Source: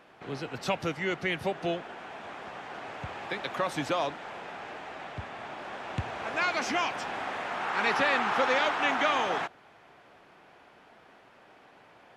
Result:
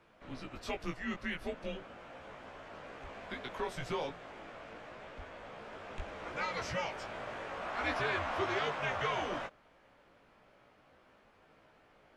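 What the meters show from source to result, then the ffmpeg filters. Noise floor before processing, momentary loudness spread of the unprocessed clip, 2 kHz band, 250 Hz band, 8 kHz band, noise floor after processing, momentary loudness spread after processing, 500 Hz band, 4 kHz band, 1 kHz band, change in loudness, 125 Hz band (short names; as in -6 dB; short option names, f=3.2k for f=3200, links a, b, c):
-57 dBFS, 15 LU, -8.5 dB, -7.0 dB, -9.0 dB, -65 dBFS, 15 LU, -7.0 dB, -8.5 dB, -9.0 dB, -8.5 dB, -5.5 dB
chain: -af "flanger=delay=16.5:depth=2.4:speed=0.35,afreqshift=-150,volume=-5dB"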